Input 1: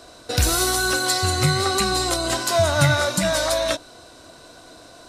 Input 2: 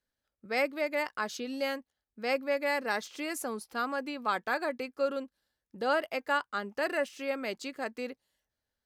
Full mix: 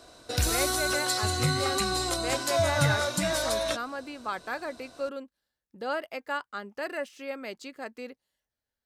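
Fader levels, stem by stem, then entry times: -7.0, -3.0 dB; 0.00, 0.00 s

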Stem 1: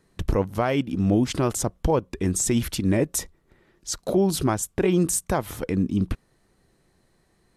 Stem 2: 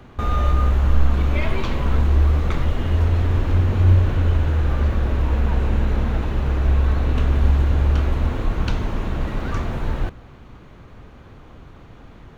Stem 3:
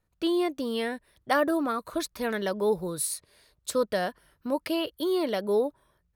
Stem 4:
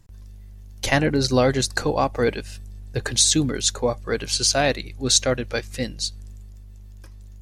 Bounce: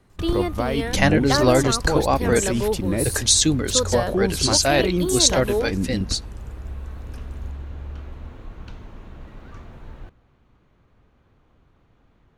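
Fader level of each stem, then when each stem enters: -2.0, -16.5, +1.5, +1.0 dB; 0.00, 0.00, 0.00, 0.10 s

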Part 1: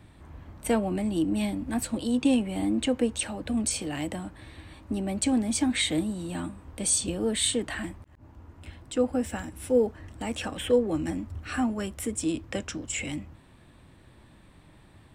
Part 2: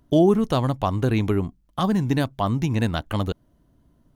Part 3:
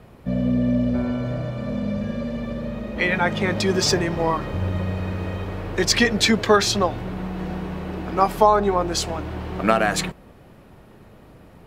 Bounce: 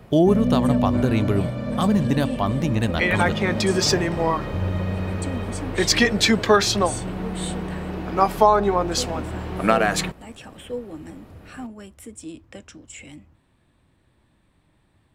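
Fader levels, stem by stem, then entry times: -8.5, 0.0, 0.0 dB; 0.00, 0.00, 0.00 s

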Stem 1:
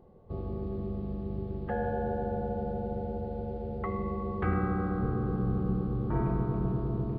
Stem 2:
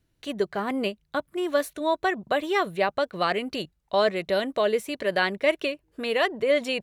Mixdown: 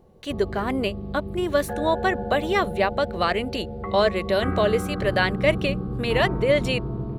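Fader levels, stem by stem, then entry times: +2.0, +2.0 dB; 0.00, 0.00 s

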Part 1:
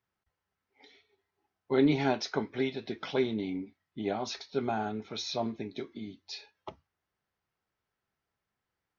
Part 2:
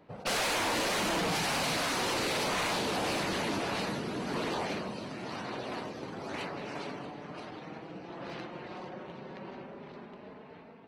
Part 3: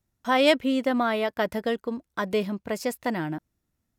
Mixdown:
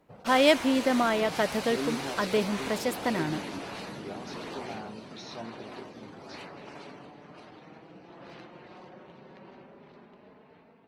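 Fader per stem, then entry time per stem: -9.5, -6.0, -1.0 dB; 0.00, 0.00, 0.00 s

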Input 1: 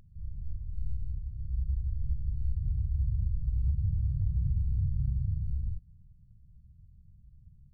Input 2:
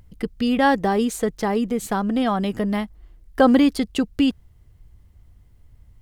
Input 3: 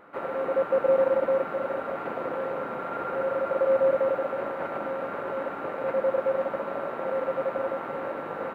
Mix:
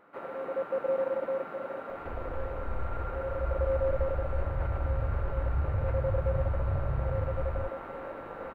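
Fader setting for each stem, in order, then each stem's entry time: -1.0 dB, off, -7.5 dB; 1.90 s, off, 0.00 s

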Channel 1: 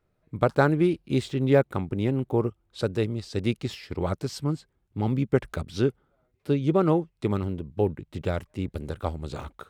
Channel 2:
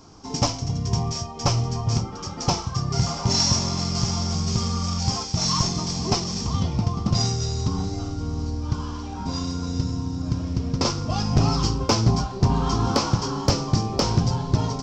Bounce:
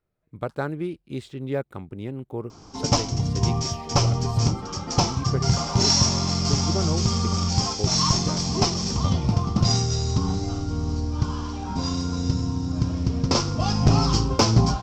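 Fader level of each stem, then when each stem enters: -7.5, +1.5 dB; 0.00, 2.50 s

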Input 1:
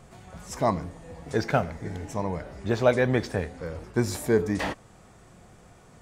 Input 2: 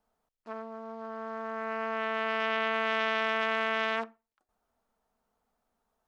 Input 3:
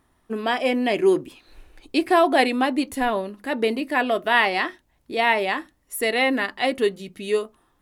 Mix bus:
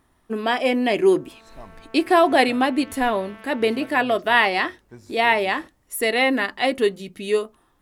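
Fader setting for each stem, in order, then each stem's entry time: -19.5, -16.0, +1.5 dB; 0.95, 0.00, 0.00 s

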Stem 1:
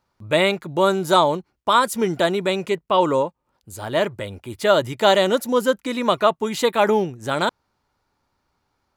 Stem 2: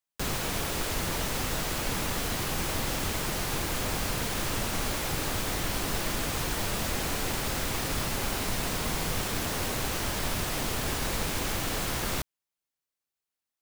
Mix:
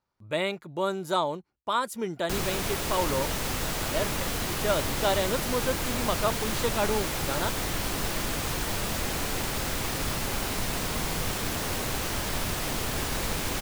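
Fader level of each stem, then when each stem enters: -10.5, +0.5 dB; 0.00, 2.10 s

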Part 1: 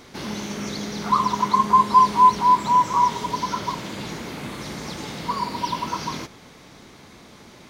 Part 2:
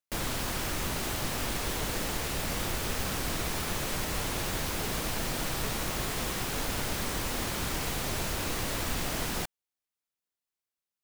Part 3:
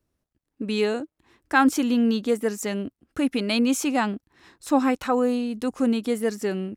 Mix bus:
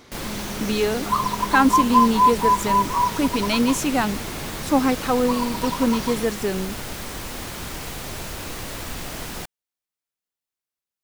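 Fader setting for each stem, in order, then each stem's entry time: -2.5, 0.0, +1.5 dB; 0.00, 0.00, 0.00 s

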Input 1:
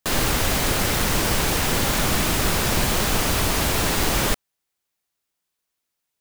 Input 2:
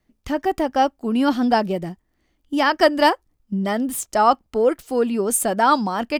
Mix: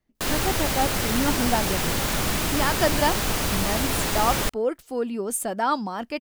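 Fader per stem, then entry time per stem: -3.5, -7.0 dB; 0.15, 0.00 s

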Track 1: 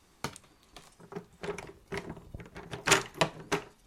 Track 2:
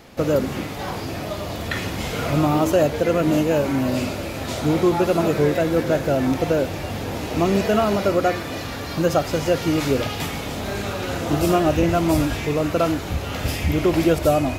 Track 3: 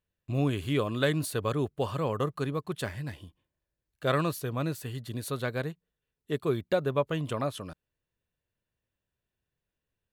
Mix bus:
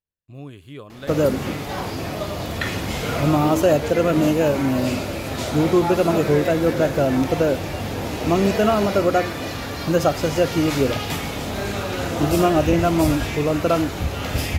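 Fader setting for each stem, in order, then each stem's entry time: -17.0, +1.0, -10.0 dB; 0.95, 0.90, 0.00 s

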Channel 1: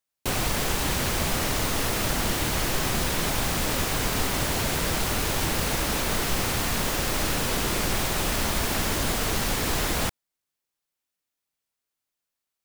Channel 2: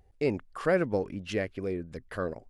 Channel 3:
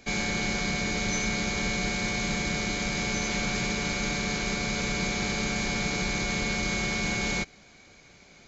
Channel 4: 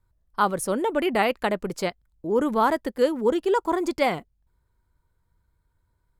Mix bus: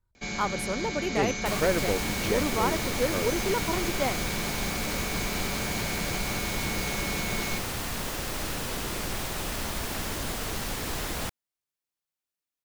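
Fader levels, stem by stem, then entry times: -6.5, -0.5, -5.0, -7.0 dB; 1.20, 0.95, 0.15, 0.00 s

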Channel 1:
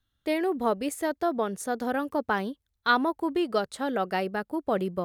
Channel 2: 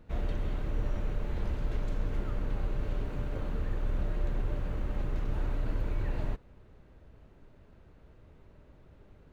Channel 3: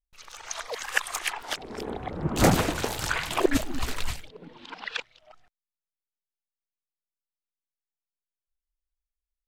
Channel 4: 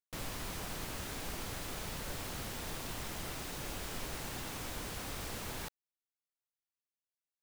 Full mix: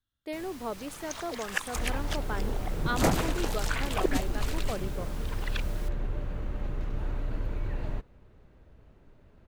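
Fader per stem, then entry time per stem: -9.5, -0.5, -5.5, -6.5 dB; 0.00, 1.65, 0.60, 0.20 s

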